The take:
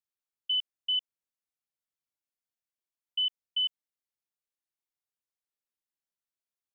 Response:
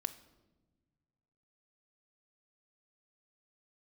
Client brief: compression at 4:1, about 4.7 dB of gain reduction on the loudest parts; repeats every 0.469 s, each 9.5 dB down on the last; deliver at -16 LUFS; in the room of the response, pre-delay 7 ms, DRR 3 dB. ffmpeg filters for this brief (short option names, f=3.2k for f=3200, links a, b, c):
-filter_complex "[0:a]acompressor=threshold=-31dB:ratio=4,aecho=1:1:469|938|1407|1876:0.335|0.111|0.0365|0.012,asplit=2[a][b];[1:a]atrim=start_sample=2205,adelay=7[c];[b][c]afir=irnorm=-1:irlink=0,volume=-2.5dB[d];[a][d]amix=inputs=2:normalize=0,volume=17dB"